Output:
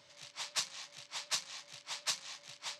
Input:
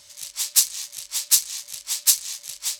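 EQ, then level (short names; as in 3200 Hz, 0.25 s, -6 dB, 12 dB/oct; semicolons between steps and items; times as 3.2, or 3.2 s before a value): HPF 120 Hz 24 dB/oct; dynamic EQ 880 Hz, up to +3 dB, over -45 dBFS, Q 0.77; tape spacing loss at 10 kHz 31 dB; +1.0 dB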